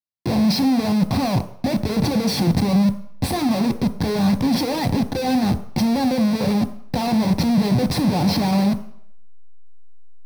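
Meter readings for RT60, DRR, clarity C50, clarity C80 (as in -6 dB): 0.65 s, 7.5 dB, 13.5 dB, 16.0 dB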